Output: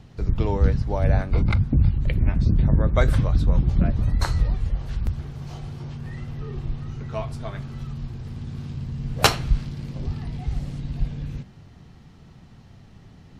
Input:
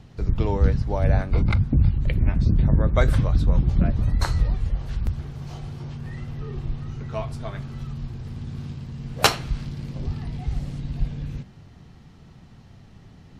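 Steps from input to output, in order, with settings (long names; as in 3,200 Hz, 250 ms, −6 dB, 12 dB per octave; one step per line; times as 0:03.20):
0:08.74–0:09.60: low-shelf EQ 140 Hz +7.5 dB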